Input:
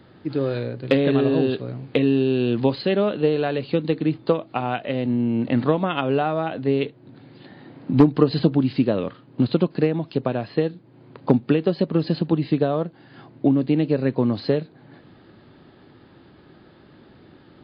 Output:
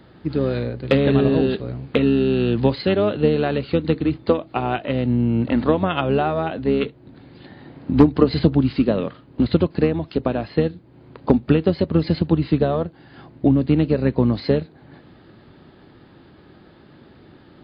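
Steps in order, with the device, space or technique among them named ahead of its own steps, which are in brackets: octave pedal (harmony voices -12 st -9 dB); trim +1.5 dB

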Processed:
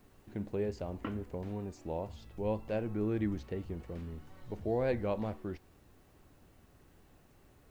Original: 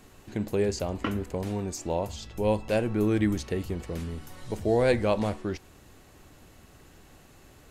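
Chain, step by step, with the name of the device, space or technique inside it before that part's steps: cassette deck with a dirty head (tape spacing loss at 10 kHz 23 dB; wow and flutter; white noise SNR 37 dB); trim -7.5 dB

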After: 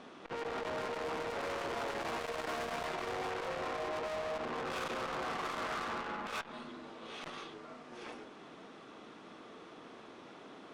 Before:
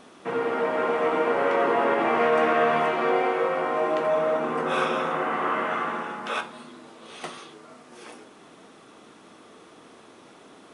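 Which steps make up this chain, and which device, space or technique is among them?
valve radio (band-pass 88–4800 Hz; valve stage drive 34 dB, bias 0.5; transformer saturation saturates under 450 Hz)

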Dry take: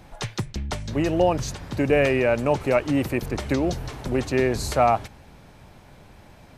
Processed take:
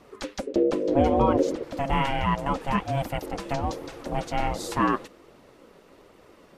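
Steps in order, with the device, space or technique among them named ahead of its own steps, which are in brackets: 0.47–1.63 s: tone controls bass +13 dB, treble -6 dB; alien voice (ring modulator 410 Hz; flange 1.3 Hz, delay 0.8 ms, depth 4.6 ms, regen -41%); trim +2 dB

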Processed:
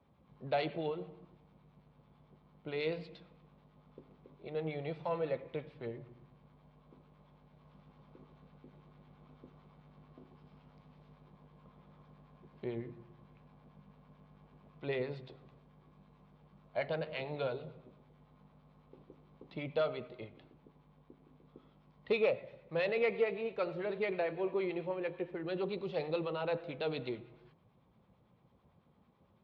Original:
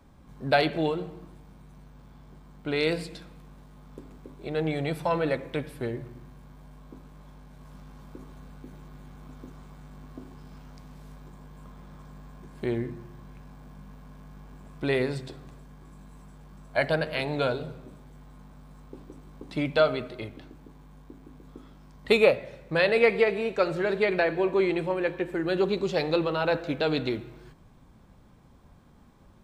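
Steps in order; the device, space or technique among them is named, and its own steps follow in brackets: guitar amplifier with harmonic tremolo (harmonic tremolo 9 Hz, depth 50%, crossover 830 Hz; saturation -14.5 dBFS, distortion -21 dB; cabinet simulation 97–3800 Hz, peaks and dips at 280 Hz -6 dB, 500 Hz +3 dB, 1.6 kHz -7 dB); trim -7.5 dB

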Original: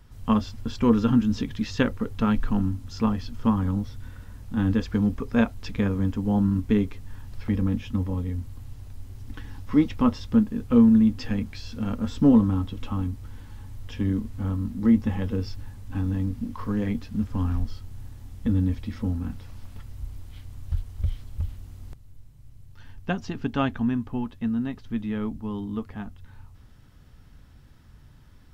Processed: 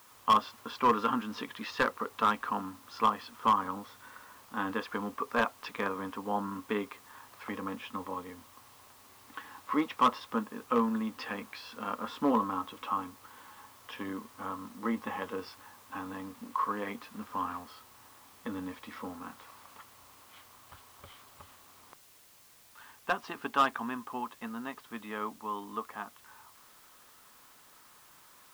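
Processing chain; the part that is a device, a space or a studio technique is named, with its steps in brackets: drive-through speaker (band-pass 540–3700 Hz; peaking EQ 1.1 kHz +11 dB 0.55 oct; hard clipper -17.5 dBFS, distortion -13 dB; white noise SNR 24 dB)

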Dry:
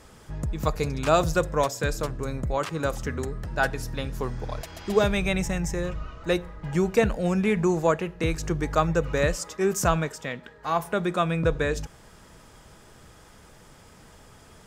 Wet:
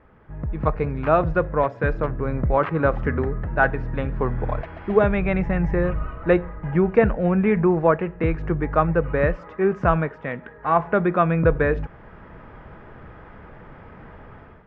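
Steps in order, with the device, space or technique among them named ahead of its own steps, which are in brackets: action camera in a waterproof case (low-pass 2.1 kHz 24 dB/octave; level rider gain up to 12 dB; trim -3 dB; AAC 96 kbps 48 kHz)

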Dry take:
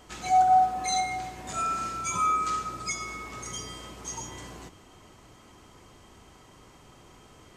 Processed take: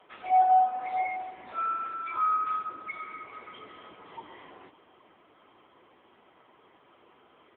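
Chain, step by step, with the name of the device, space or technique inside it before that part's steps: satellite phone (band-pass 330–3100 Hz; delay 560 ms -22 dB; AMR-NB 6.7 kbps 8 kHz)

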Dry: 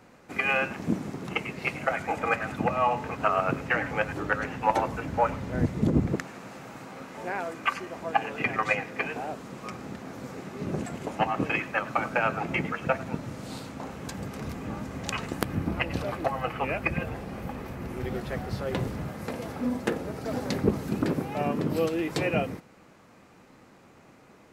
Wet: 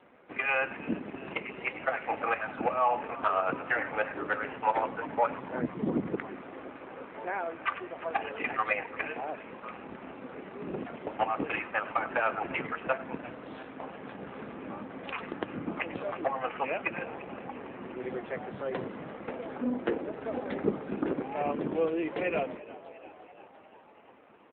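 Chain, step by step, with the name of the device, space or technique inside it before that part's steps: high-pass 57 Hz 24 dB/octave; frequency-shifting echo 346 ms, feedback 65%, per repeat +62 Hz, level -18 dB; 19.43–20.10 s: dynamic bell 330 Hz, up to +4 dB, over -42 dBFS, Q 1.9; telephone (band-pass 280–3200 Hz; saturation -15 dBFS, distortion -20 dB; AMR-NB 7.4 kbps 8 kHz)

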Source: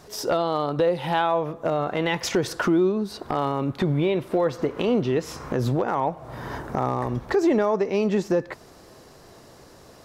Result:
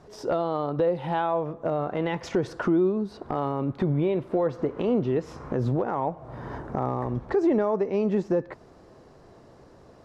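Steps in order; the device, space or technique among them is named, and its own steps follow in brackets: through cloth (low-pass 9 kHz 12 dB/octave; treble shelf 2 kHz -13.5 dB); trim -1.5 dB

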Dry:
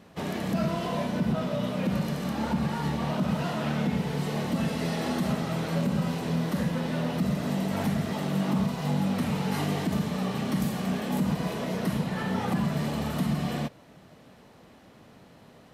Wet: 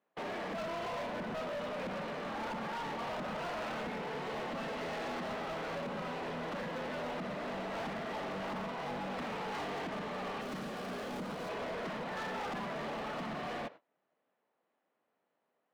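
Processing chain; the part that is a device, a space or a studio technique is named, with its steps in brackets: walkie-talkie (band-pass 450–2300 Hz; hard clipper -37.5 dBFS, distortion -8 dB; gate -51 dBFS, range -25 dB); 10.41–11.49 s: FFT filter 510 Hz 0 dB, 920 Hz -5 dB, 1.4 kHz 0 dB, 1.9 kHz -4 dB, 13 kHz +8 dB; trim +1 dB

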